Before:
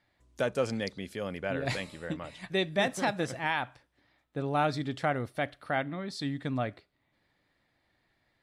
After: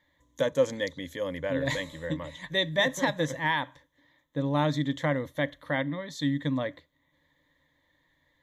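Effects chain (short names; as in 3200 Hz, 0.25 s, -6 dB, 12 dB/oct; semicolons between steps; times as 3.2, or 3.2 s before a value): ripple EQ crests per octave 1.1, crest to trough 14 dB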